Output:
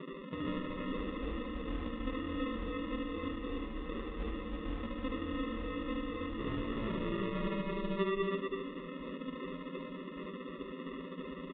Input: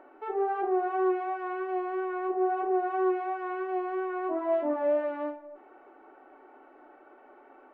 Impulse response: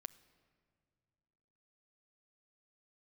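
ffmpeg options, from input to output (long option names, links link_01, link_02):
-filter_complex "[0:a]afftfilt=real='re*gte(hypot(re,im),0.00631)':imag='im*gte(hypot(re,im),0.00631)':win_size=1024:overlap=0.75,aemphasis=mode=production:type=riaa,bandreject=frequency=50:width_type=h:width=6,bandreject=frequency=100:width_type=h:width=6,bandreject=frequency=150:width_type=h:width=6,bandreject=frequency=200:width_type=h:width=6,bandreject=frequency=250:width_type=h:width=6,bandreject=frequency=300:width_type=h:width=6,bandreject=frequency=350:width_type=h:width=6,bandreject=frequency=400:width_type=h:width=6,bandreject=frequency=450:width_type=h:width=6,afftfilt=real='re*lt(hypot(re,im),0.0562)':imag='im*lt(hypot(re,im),0.0562)':win_size=1024:overlap=0.75,equalizer=frequency=680:width_type=o:width=1.4:gain=7,aecho=1:1:6.5:0.78,acrossover=split=130|980[link_01][link_02][link_03];[link_02]acontrast=32[link_04];[link_01][link_04][link_03]amix=inputs=3:normalize=0,acrusher=samples=38:mix=1:aa=0.000001,asplit=2[link_05][link_06];[link_06]aecho=0:1:49.56|218.7:0.794|0.708[link_07];[link_05][link_07]amix=inputs=2:normalize=0,asetrate=29591,aresample=44100,aresample=8000,aresample=44100"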